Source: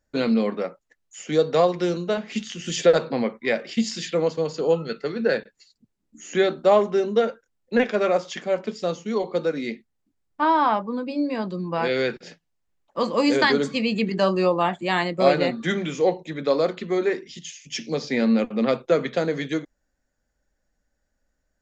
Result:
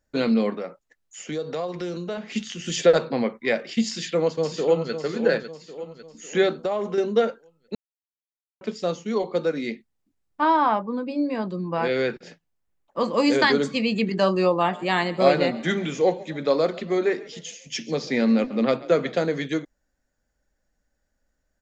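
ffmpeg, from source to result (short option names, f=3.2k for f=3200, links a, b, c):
-filter_complex "[0:a]asettb=1/sr,asplit=3[a][b][c];[a]atrim=end=0.554[d];[b]atrim=start=0.55:end=2.36,asetpts=PTS-STARTPTS,afade=t=in:d=0.004:c=qsin,afade=t=out:st=1.806:d=0.004:c=qsin,acompressor=threshold=-28dB:ratio=3:attack=3.2:release=140:knee=1:detection=peak[e];[c]atrim=start=2.356[f];[d][e]acrossfade=d=0.004:c1=hsin:c2=qsin[g];[g][f]acrossfade=d=0.004:c1=qsin:c2=hsin,asplit=2[h][i];[i]afade=t=in:st=3.88:d=0.01,afade=t=out:st=4.92:d=0.01,aecho=0:1:550|1100|1650|2200|2750:0.375837|0.169127|0.0761071|0.0342482|0.0154117[j];[h][j]amix=inputs=2:normalize=0,asettb=1/sr,asplit=3[k][l][m];[k]atrim=end=6.564[n];[l]atrim=start=6.56:end=6.98,asetpts=PTS-STARTPTS,afade=t=in:d=0.004:c=qsin,afade=t=out:st=0.416:d=0.004:c=qsin,acompressor=threshold=-21dB:ratio=10:attack=3.2:release=140:knee=1:detection=peak[o];[m]atrim=start=6.976[p];[n][o]acrossfade=d=0.004:c1=hsin:c2=qsin[q];[q][p]acrossfade=d=0.004:c1=qsin:c2=hsin,asettb=1/sr,asplit=3[r][s][t];[r]atrim=end=10.564[u];[s]atrim=start=10.56:end=13.14,asetpts=PTS-STARTPTS,afade=t=in:d=0.004:c=qsin,afade=t=out:st=2.576:d=0.004:c=qsin,equalizer=f=4.9k:t=o:w=2:g=-4[v];[t]atrim=start=13.136[w];[u][v]acrossfade=d=0.004:c1=hsin:c2=qsin[x];[x][w]acrossfade=d=0.004:c1=qsin:c2=hsin,asplit=3[y][z][aa];[y]afade=t=out:st=14.69:d=0.02[ab];[z]asplit=5[ac][ad][ae][af][ag];[ad]adelay=136,afreqshift=33,volume=-20dB[ah];[ae]adelay=272,afreqshift=66,volume=-25.8dB[ai];[af]adelay=408,afreqshift=99,volume=-31.7dB[aj];[ag]adelay=544,afreqshift=132,volume=-37.5dB[ak];[ac][ah][ai][aj][ak]amix=inputs=5:normalize=0,afade=t=in:st=14.69:d=0.02,afade=t=out:st=19.23:d=0.02[al];[aa]afade=t=in:st=19.23:d=0.02[am];[ab][al][am]amix=inputs=3:normalize=0,asplit=3[an][ao][ap];[an]atrim=end=7.75,asetpts=PTS-STARTPTS,afade=t=out:st=7.746:d=0.004:c=hsin[aq];[ao]atrim=start=7.75:end=8.61,asetpts=PTS-STARTPTS,volume=0[ar];[ap]atrim=start=8.61,asetpts=PTS-STARTPTS,afade=t=in:d=0.004:c=hsin[as];[aq][ar][as]concat=n=3:v=0:a=1"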